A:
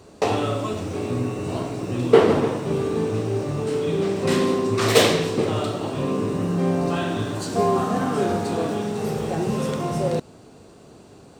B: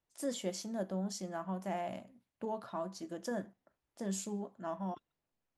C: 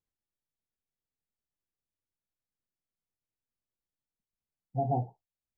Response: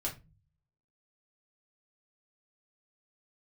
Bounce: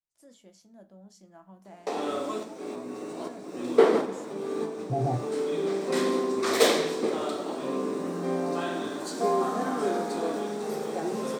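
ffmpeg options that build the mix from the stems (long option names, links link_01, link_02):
-filter_complex "[0:a]highpass=frequency=230:width=0.5412,highpass=frequency=230:width=1.3066,equalizer=frequency=2800:width=6.3:gain=-8.5,adelay=1650,volume=-10.5dB[link_01];[1:a]volume=-19.5dB,asplit=3[link_02][link_03][link_04];[link_03]volume=-7.5dB[link_05];[2:a]alimiter=level_in=2dB:limit=-24dB:level=0:latency=1,volume=-2dB,adelay=150,volume=-0.5dB[link_06];[link_04]apad=whole_len=575355[link_07];[link_01][link_07]sidechaincompress=threshold=-58dB:ratio=10:attack=5.9:release=453[link_08];[3:a]atrim=start_sample=2205[link_09];[link_05][link_09]afir=irnorm=-1:irlink=0[link_10];[link_08][link_02][link_06][link_10]amix=inputs=4:normalize=0,dynaudnorm=framelen=150:gausssize=17:maxgain=6dB"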